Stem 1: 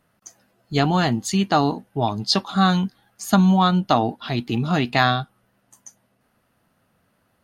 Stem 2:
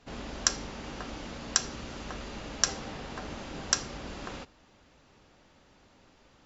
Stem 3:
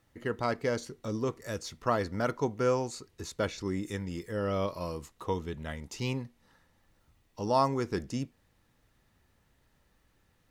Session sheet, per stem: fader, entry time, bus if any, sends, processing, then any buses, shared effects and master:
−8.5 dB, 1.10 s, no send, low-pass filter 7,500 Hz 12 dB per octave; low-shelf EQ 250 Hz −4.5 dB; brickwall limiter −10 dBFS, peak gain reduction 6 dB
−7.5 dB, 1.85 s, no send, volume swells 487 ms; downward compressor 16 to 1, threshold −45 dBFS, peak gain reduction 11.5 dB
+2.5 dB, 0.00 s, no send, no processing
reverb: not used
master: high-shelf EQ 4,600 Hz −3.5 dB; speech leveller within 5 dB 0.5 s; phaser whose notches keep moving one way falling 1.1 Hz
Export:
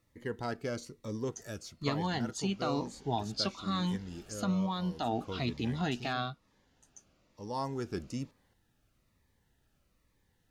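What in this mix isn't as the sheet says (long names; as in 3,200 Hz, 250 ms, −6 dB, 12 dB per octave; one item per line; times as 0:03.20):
stem 3 +2.5 dB → −8.5 dB
master: missing high-shelf EQ 4,600 Hz −3.5 dB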